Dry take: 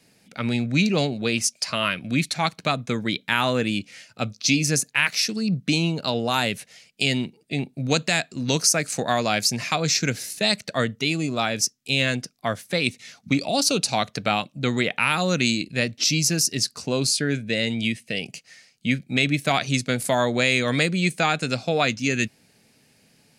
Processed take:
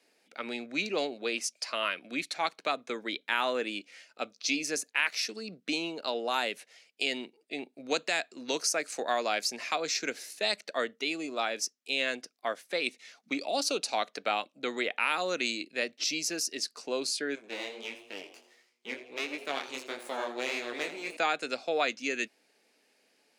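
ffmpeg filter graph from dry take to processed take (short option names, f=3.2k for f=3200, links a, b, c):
-filter_complex "[0:a]asettb=1/sr,asplit=3[a][b][c];[a]atrim=end=17.354[d];[b]atrim=start=17.35:end=21.17,asetpts=PTS-STARTPTS,afade=t=in:d=0.004:c=qsin,afade=t=out:st=3.816:d=0.004:c=qsin,aeval=exprs='max(val(0),0)':c=same,flanger=delay=17:depth=7.7:speed=1.5,asplit=5[e][f][g][h][i];[f]adelay=83,afreqshift=120,volume=-13dB[j];[g]adelay=166,afreqshift=240,volume=-20.5dB[k];[h]adelay=249,afreqshift=360,volume=-28.1dB[l];[i]adelay=332,afreqshift=480,volume=-35.6dB[m];[e][j][k][l][m]amix=inputs=5:normalize=0,atrim=end_sample=168462[n];[c]atrim=start=21.166[o];[d][n]acrossfade=d=0.004:c1=hsin:c2=qsin[p];[p][o]acrossfade=d=0.004:c1=qsin:c2=hsin,highpass=f=320:w=0.5412,highpass=f=320:w=1.3066,highshelf=f=5.6k:g=-8,volume=-6dB"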